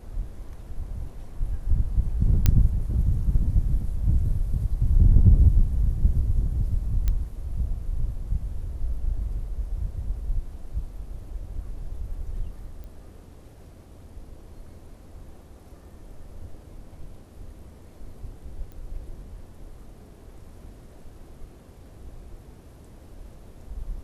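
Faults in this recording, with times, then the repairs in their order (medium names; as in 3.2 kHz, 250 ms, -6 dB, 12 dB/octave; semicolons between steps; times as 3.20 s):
2.46 s: pop -6 dBFS
7.08 s: pop -13 dBFS
12.84 s: pop
18.72 s: pop -31 dBFS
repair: de-click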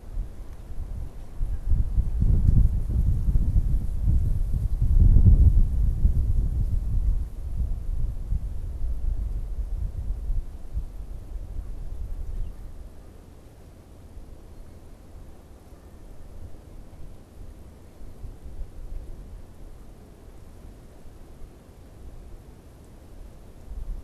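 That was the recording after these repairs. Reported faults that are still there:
2.46 s: pop
18.72 s: pop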